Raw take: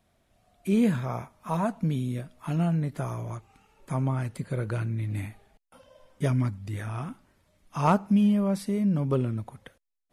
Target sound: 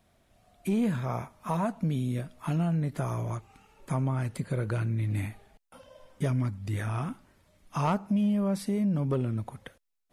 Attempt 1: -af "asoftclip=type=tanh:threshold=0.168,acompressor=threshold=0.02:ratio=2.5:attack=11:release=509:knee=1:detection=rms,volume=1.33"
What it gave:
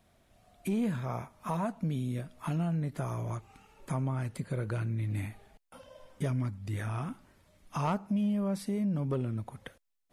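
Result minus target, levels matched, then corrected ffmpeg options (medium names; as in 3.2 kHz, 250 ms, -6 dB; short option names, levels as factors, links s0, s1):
compression: peak gain reduction +3.5 dB
-af "asoftclip=type=tanh:threshold=0.168,acompressor=threshold=0.0398:ratio=2.5:attack=11:release=509:knee=1:detection=rms,volume=1.33"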